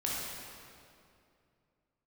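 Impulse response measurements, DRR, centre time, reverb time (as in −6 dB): −5.5 dB, 144 ms, 2.5 s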